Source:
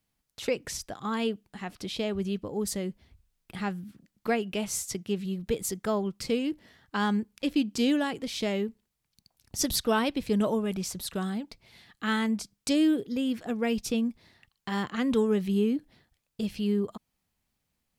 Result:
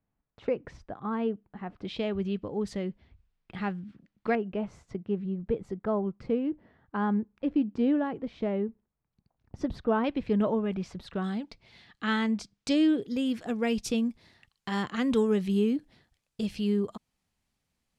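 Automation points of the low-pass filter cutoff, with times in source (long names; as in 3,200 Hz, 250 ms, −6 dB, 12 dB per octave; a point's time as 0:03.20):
1,300 Hz
from 0:01.85 3,000 Hz
from 0:04.35 1,200 Hz
from 0:10.04 2,300 Hz
from 0:11.24 5,100 Hz
from 0:13.02 9,800 Hz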